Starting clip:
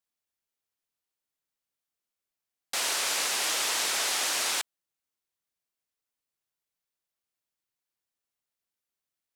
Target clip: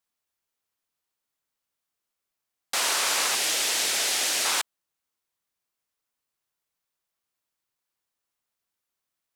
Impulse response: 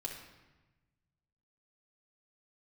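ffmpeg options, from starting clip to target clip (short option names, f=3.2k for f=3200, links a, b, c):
-af "asetnsamples=n=441:p=0,asendcmd='3.35 equalizer g -7;4.45 equalizer g 3.5',equalizer=f=1.1k:t=o:w=0.89:g=3,volume=3.5dB"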